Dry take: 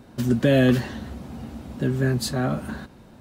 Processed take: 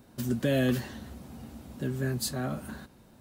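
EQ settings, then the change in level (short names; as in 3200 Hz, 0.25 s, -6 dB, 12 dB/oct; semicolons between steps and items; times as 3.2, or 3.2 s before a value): high shelf 7100 Hz +12 dB; -8.5 dB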